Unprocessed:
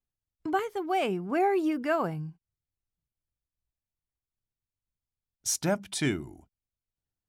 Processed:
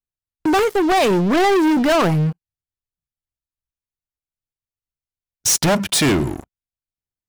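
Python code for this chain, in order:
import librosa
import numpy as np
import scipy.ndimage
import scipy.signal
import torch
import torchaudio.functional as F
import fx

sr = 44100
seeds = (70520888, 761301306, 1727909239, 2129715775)

y = fx.leveller(x, sr, passes=5)
y = y * librosa.db_to_amplitude(4.0)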